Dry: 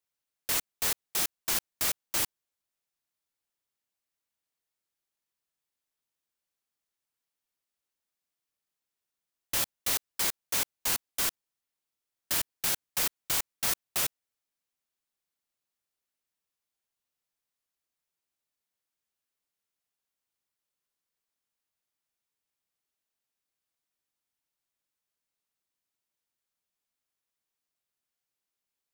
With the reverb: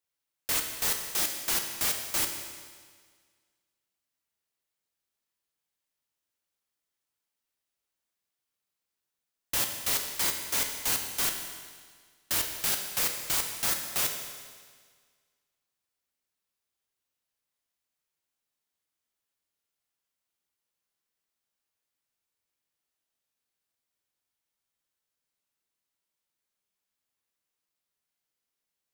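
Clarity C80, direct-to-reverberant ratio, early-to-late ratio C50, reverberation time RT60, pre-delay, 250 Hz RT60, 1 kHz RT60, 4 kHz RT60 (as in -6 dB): 7.0 dB, 3.5 dB, 6.0 dB, 1.7 s, 12 ms, 1.7 s, 1.7 s, 1.7 s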